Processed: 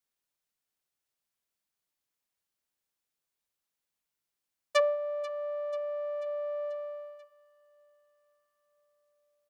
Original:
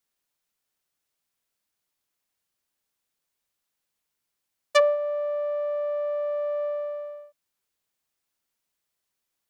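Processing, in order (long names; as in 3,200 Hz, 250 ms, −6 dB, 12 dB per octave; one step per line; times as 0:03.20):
repeating echo 488 ms, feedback 57%, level −17.5 dB
level −6 dB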